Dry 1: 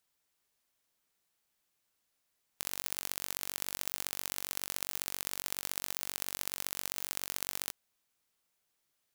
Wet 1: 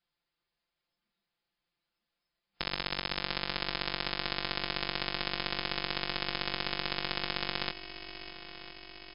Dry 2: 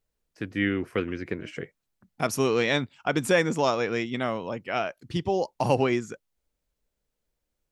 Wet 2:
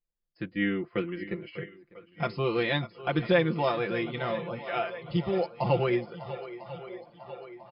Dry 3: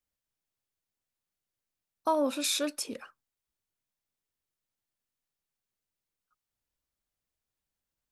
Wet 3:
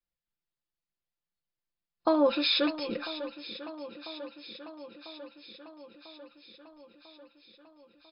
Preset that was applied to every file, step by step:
brick-wall FIR low-pass 5.2 kHz; bass shelf 150 Hz +6 dB; comb 5.8 ms, depth 87%; shuffle delay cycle 996 ms, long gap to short 1.5:1, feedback 62%, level -14 dB; spectral noise reduction 11 dB; peak normalisation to -12 dBFS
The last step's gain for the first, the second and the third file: +6.5 dB, -6.0 dB, +3.0 dB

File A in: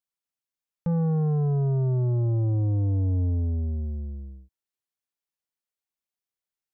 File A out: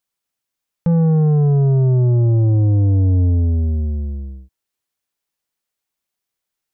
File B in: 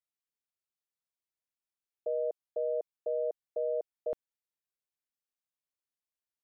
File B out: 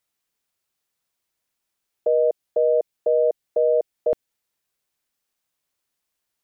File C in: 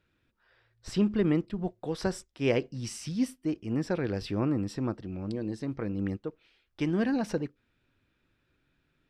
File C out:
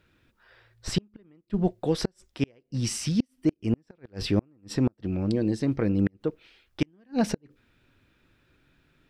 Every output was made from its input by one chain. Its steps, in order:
inverted gate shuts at -21 dBFS, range -40 dB; dynamic bell 1.1 kHz, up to -5 dB, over -51 dBFS, Q 1.3; peak normalisation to -12 dBFS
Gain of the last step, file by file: +10.0 dB, +14.5 dB, +8.5 dB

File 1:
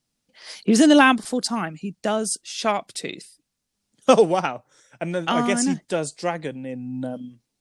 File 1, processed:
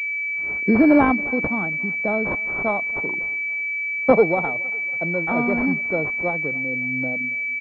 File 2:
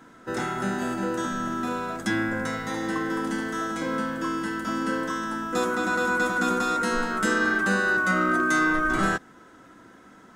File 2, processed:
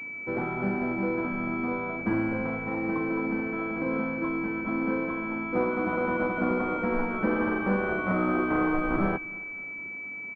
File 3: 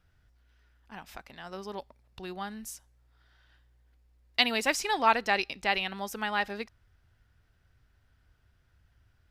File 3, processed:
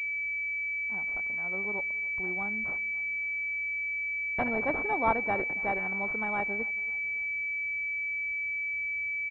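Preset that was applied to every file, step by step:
feedback delay 277 ms, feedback 46%, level -23 dB; class-D stage that switches slowly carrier 2.3 kHz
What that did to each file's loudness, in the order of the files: +1.0 LU, -3.0 LU, 0.0 LU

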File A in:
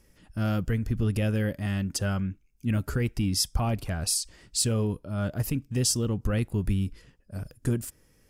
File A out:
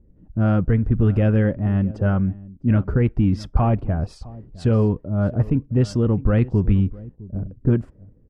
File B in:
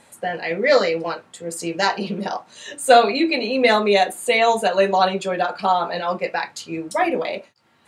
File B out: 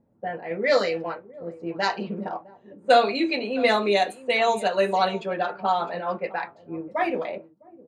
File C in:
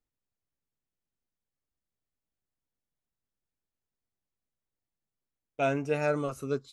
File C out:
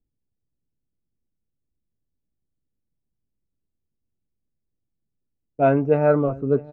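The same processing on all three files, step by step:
delay 659 ms -19 dB; level-controlled noise filter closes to 310 Hz, open at -13.5 dBFS; peak normalisation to -6 dBFS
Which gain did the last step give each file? +9.0 dB, -5.0 dB, +11.5 dB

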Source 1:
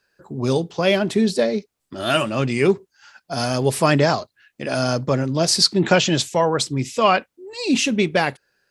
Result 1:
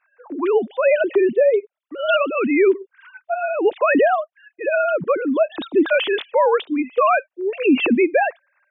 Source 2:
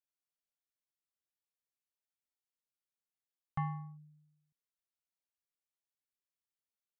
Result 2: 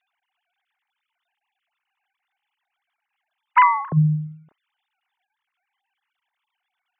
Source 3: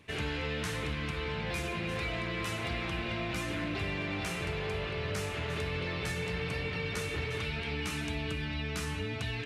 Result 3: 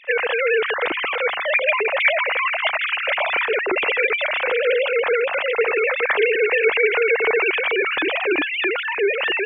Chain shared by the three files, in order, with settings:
formants replaced by sine waves; loudness maximiser +11.5 dB; normalise loudness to -19 LUFS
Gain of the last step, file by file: -7.5 dB, +12.0 dB, +3.0 dB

